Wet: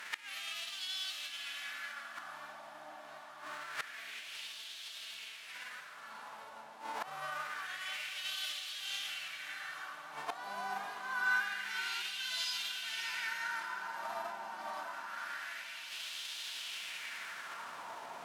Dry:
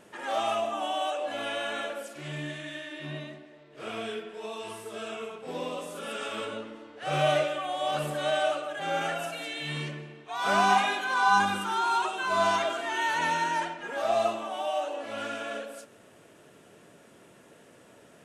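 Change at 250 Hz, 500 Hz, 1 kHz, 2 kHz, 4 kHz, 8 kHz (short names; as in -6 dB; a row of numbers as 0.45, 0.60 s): -24.0, -22.5, -15.0, -6.0, -3.0, -4.5 dB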